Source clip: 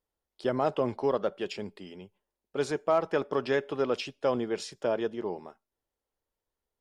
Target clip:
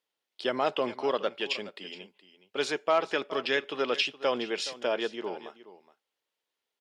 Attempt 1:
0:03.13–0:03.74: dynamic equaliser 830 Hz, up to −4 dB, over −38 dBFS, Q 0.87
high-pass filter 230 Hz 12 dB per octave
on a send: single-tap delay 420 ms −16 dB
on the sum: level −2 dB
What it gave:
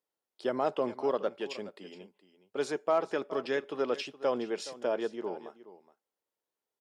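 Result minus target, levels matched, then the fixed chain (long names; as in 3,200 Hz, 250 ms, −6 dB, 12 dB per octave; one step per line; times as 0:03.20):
4,000 Hz band −8.5 dB
0:03.13–0:03.74: dynamic equaliser 830 Hz, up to −4 dB, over −38 dBFS, Q 0.87
high-pass filter 230 Hz 12 dB per octave
parametric band 3,000 Hz +13 dB 1.9 octaves
on a send: single-tap delay 420 ms −16 dB
on the sum: level −2 dB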